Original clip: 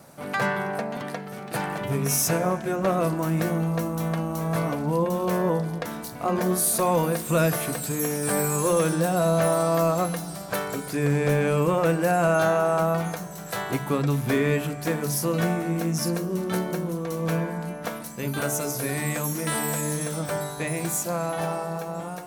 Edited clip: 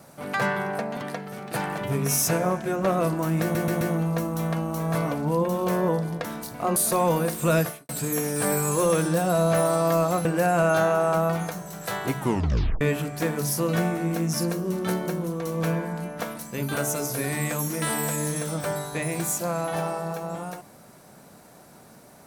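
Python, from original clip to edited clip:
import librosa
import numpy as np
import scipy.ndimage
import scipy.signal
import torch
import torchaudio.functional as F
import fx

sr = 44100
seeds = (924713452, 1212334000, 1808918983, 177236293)

y = fx.edit(x, sr, fx.stutter(start_s=3.42, slice_s=0.13, count=4),
    fx.cut(start_s=6.37, length_s=0.26),
    fx.fade_out_span(start_s=7.48, length_s=0.28, curve='qua'),
    fx.cut(start_s=10.12, length_s=1.78),
    fx.tape_stop(start_s=13.84, length_s=0.62), tone=tone)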